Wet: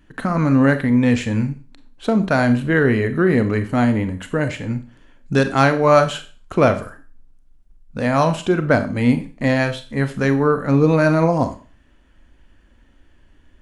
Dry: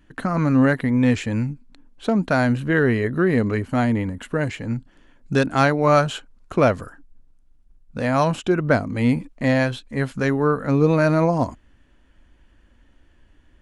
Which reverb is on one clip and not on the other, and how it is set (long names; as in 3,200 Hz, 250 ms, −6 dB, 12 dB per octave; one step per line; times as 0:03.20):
four-comb reverb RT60 0.37 s, combs from 29 ms, DRR 9 dB
level +2 dB